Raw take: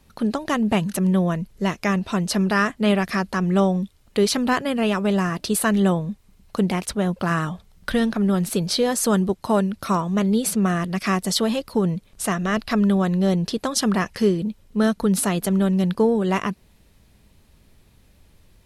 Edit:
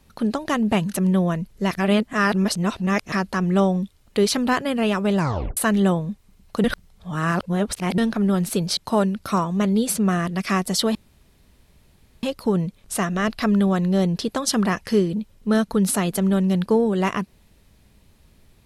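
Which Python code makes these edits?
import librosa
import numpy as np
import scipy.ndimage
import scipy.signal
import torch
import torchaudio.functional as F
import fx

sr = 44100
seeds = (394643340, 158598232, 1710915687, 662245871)

y = fx.edit(x, sr, fx.reverse_span(start_s=1.71, length_s=1.41),
    fx.tape_stop(start_s=5.18, length_s=0.39),
    fx.reverse_span(start_s=6.64, length_s=1.34),
    fx.cut(start_s=8.77, length_s=0.57),
    fx.insert_room_tone(at_s=11.52, length_s=1.28), tone=tone)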